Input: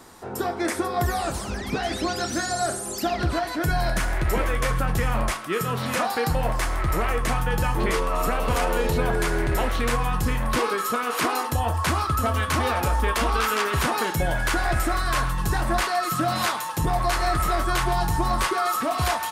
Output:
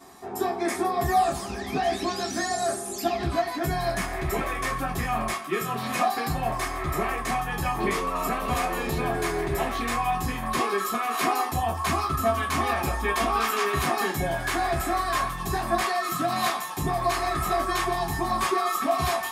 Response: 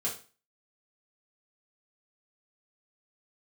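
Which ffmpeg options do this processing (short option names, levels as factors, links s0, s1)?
-filter_complex "[1:a]atrim=start_sample=2205,atrim=end_sample=3528,asetrate=70560,aresample=44100[s0];[0:a][s0]afir=irnorm=-1:irlink=0,volume=0.794"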